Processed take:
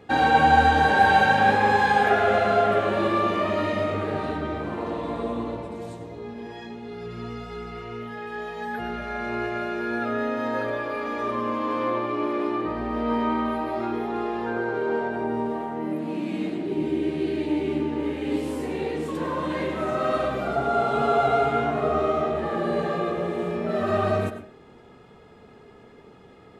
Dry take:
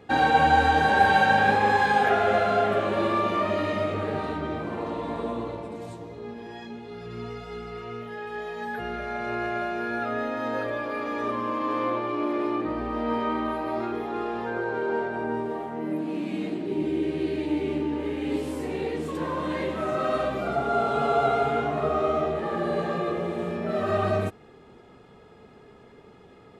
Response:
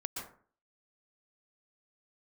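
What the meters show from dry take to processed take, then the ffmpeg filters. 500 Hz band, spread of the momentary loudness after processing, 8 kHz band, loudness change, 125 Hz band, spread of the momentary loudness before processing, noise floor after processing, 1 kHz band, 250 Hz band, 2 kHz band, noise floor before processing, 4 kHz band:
+1.5 dB, 16 LU, n/a, +1.5 dB, +1.5 dB, 16 LU, -50 dBFS, +1.5 dB, +2.0 dB, +1.5 dB, -51 dBFS, +1.5 dB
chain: -filter_complex "[0:a]asplit=2[a][b];[1:a]atrim=start_sample=2205,asetrate=57330,aresample=44100[c];[b][c]afir=irnorm=-1:irlink=0,volume=-1.5dB[d];[a][d]amix=inputs=2:normalize=0,volume=-2.5dB"

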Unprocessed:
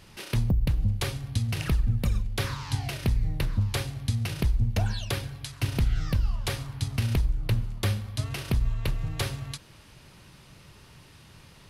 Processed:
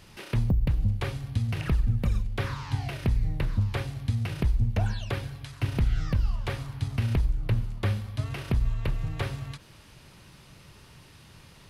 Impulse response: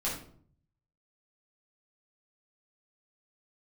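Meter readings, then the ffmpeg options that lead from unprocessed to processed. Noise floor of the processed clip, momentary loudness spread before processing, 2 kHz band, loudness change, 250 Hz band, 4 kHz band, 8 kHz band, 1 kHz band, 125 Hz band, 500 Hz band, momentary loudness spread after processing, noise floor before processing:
-53 dBFS, 6 LU, -1.5 dB, -0.5 dB, 0.0 dB, -6.0 dB, -9.5 dB, 0.0 dB, 0.0 dB, 0.0 dB, 7 LU, -53 dBFS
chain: -filter_complex "[0:a]acrossover=split=2900[a][b];[b]acompressor=threshold=-48dB:ratio=4:attack=1:release=60[c];[a][c]amix=inputs=2:normalize=0"

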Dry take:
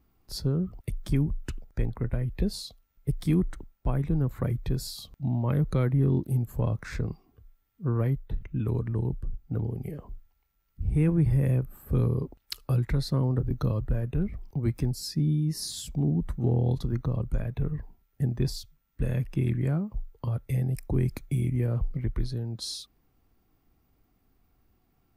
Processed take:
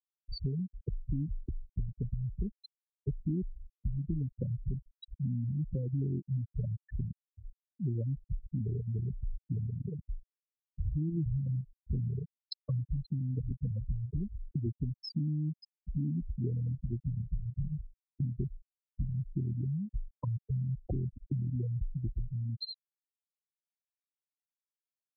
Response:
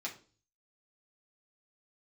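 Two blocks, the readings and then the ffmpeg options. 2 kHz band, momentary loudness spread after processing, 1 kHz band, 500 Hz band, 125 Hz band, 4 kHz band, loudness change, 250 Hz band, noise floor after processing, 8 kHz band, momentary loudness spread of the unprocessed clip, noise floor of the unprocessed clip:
under -30 dB, 8 LU, under -15 dB, -13.5 dB, -7.0 dB, -9.0 dB, -7.5 dB, -8.0 dB, under -85 dBFS, under -35 dB, 10 LU, -71 dBFS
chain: -af "acompressor=threshold=-42dB:ratio=4,afftfilt=real='re*gte(hypot(re,im),0.0316)':imag='im*gte(hypot(re,im),0.0316)':win_size=1024:overlap=0.75,volume=8.5dB"

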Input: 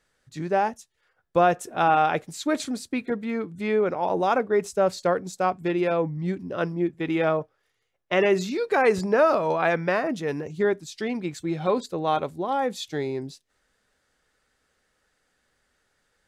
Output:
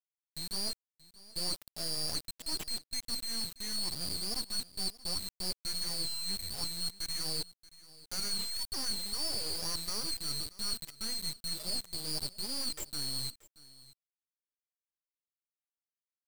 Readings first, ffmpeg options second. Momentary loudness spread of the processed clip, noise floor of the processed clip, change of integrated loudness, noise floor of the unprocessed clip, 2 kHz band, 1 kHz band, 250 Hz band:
4 LU, under -85 dBFS, -10.0 dB, -73 dBFS, -20.5 dB, -27.0 dB, -20.0 dB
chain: -af "afftfilt=real='real(if(lt(b,736),b+184*(1-2*mod(floor(b/184),2)),b),0)':imag='imag(if(lt(b,736),b+184*(1-2*mod(floor(b/184),2)),b),0)':win_size=2048:overlap=0.75,afftdn=nr=21:nf=-34,areverse,acompressor=threshold=-35dB:ratio=5,areverse,acrusher=bits=4:dc=4:mix=0:aa=0.000001,aecho=1:1:630:0.1,volume=3.5dB"

